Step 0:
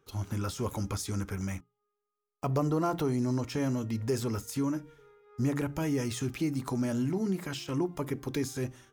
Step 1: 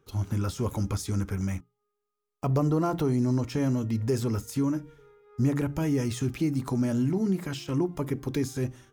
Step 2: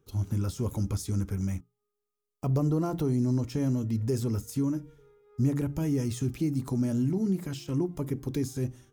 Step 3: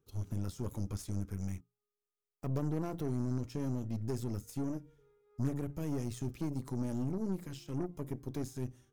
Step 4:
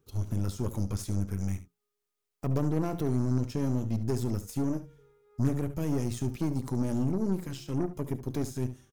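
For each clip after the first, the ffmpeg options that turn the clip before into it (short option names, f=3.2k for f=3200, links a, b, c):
-af "lowshelf=f=360:g=6"
-af "equalizer=f=1.5k:w=0.38:g=-8"
-af "aeval=exprs='0.168*(cos(1*acos(clip(val(0)/0.168,-1,1)))-cos(1*PI/2))+0.0237*(cos(4*acos(clip(val(0)/0.168,-1,1)))-cos(4*PI/2))+0.015*(cos(6*acos(clip(val(0)/0.168,-1,1)))-cos(6*PI/2))+0.0168*(cos(8*acos(clip(val(0)/0.168,-1,1)))-cos(8*PI/2))':c=same,volume=-9dB"
-af "aecho=1:1:71:0.211,volume=6.5dB"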